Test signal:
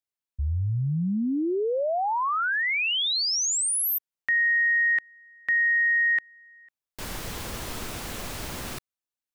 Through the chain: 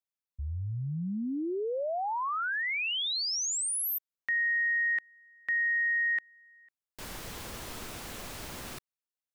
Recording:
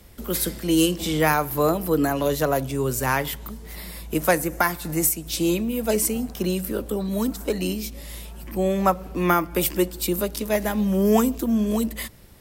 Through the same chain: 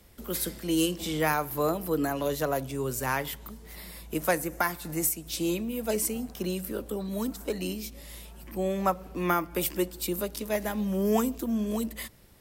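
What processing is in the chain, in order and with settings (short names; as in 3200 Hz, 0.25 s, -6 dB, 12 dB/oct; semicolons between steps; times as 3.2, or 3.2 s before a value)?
low shelf 180 Hz -3 dB; gain -6 dB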